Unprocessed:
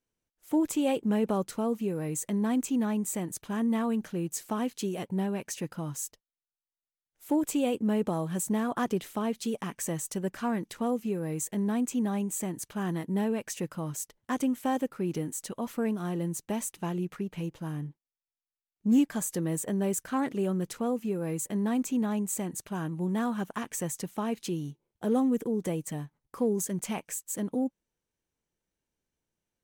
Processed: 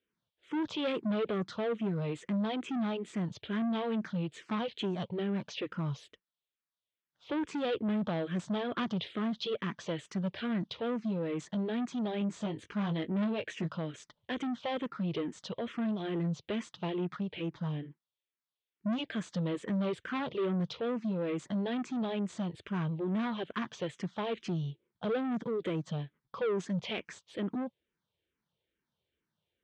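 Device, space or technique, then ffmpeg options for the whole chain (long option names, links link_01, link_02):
barber-pole phaser into a guitar amplifier: -filter_complex "[0:a]asettb=1/sr,asplit=3[link_01][link_02][link_03];[link_01]atrim=end=12.194[link_04];[link_02]atrim=start=12.19:end=13.77,asetpts=PTS-STARTPTS,afade=type=in:duration=0.004:curve=qsin,afade=type=out:start_time=1.576:duration=0.004:curve=qsin,asplit=2[link_05][link_06];[link_06]adelay=19,volume=-7dB[link_07];[link_05][link_07]amix=inputs=2:normalize=0,atrim=end_sample=69678[link_08];[link_03]atrim=start=13.766[link_09];[link_04][link_08]acrossfade=duration=0.004:curve1=hsin:curve2=qsin[link_10];[link_10][link_09]acrossfade=duration=0.004:curve1=qsin:curve2=hsin,asplit=2[link_11][link_12];[link_12]afreqshift=-2.3[link_13];[link_11][link_13]amix=inputs=2:normalize=1,asoftclip=type=tanh:threshold=-32.5dB,highpass=84,equalizer=frequency=270:width_type=q:width=4:gain=-5,equalizer=frequency=790:width_type=q:width=4:gain=-5,equalizer=frequency=3400:width_type=q:width=4:gain=7,lowpass=frequency=4200:width=0.5412,lowpass=frequency=4200:width=1.3066,volume=5.5dB"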